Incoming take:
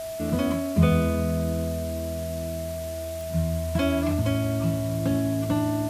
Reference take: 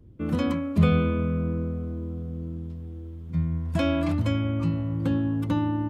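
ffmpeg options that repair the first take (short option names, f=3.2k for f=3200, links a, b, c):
-af "adeclick=t=4,bandreject=f=650:w=30,afwtdn=0.0071"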